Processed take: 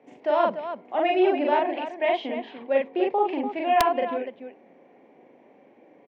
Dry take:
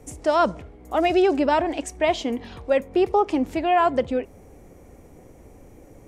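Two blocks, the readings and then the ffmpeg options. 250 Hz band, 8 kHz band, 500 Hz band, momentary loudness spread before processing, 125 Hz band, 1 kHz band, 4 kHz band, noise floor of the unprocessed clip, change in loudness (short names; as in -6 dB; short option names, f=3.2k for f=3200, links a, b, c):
-4.5 dB, n/a, -2.0 dB, 9 LU, under -10 dB, -1.5 dB, -3.0 dB, -49 dBFS, -2.5 dB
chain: -af "highpass=f=250:w=0.5412,highpass=f=250:w=1.3066,equalizer=f=310:t=q:w=4:g=-6,equalizer=f=460:t=q:w=4:g=-6,equalizer=f=1.3k:t=q:w=4:g=-10,lowpass=f=3k:w=0.5412,lowpass=f=3k:w=1.3066,aecho=1:1:40.82|291.5:0.891|0.355,aeval=exprs='(mod(2.51*val(0)+1,2)-1)/2.51':c=same,volume=-2.5dB"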